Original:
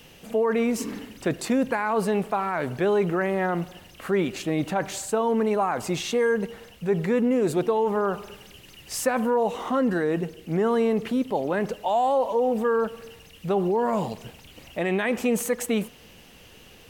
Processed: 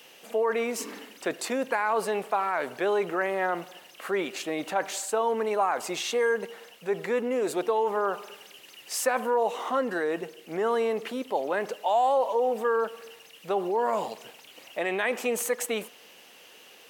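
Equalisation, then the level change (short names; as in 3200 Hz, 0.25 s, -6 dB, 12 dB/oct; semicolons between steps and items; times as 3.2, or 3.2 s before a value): HPF 450 Hz 12 dB/oct; 0.0 dB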